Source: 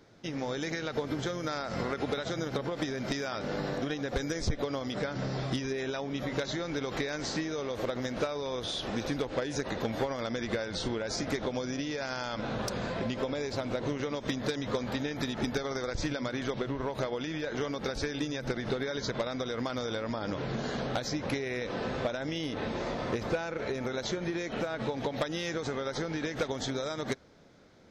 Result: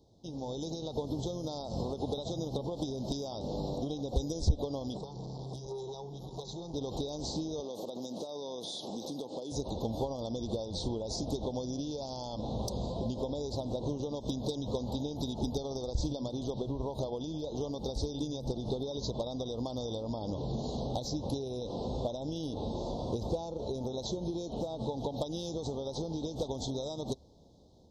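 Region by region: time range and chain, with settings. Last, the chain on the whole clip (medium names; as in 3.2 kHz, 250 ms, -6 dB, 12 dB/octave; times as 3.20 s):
4.97–6.74 s: static phaser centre 400 Hz, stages 8 + transformer saturation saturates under 940 Hz
7.60–9.52 s: high-pass 170 Hz 24 dB/octave + treble shelf 4.9 kHz +6.5 dB + compression 3:1, threshold -33 dBFS
whole clip: elliptic band-stop 900–3700 Hz, stop band 60 dB; peaking EQ 60 Hz +12 dB 1.1 oct; level rider gain up to 4 dB; trim -6 dB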